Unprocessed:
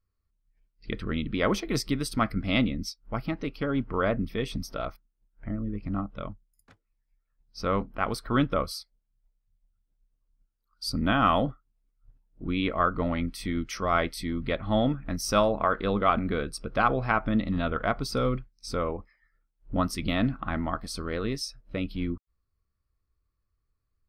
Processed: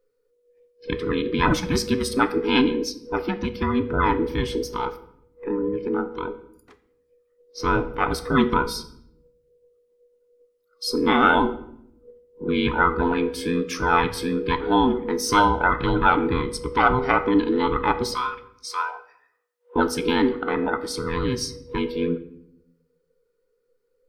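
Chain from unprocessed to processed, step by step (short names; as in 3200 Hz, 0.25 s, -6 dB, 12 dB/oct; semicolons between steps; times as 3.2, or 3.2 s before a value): band inversion scrambler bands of 500 Hz; 18.14–19.76 HPF 770 Hz 24 dB/oct; shoebox room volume 160 m³, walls mixed, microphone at 0.31 m; gain +5 dB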